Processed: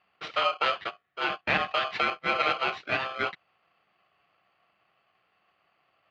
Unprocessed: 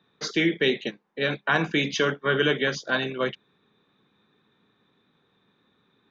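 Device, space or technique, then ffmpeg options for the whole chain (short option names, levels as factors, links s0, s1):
ring modulator pedal into a guitar cabinet: -af "aeval=exprs='val(0)*sgn(sin(2*PI*920*n/s))':c=same,highpass=94,equalizer=f=260:t=q:w=4:g=-5,equalizer=f=490:t=q:w=4:g=-7,equalizer=f=1800:t=q:w=4:g=4,lowpass=f=3400:w=0.5412,lowpass=f=3400:w=1.3066,volume=0.75"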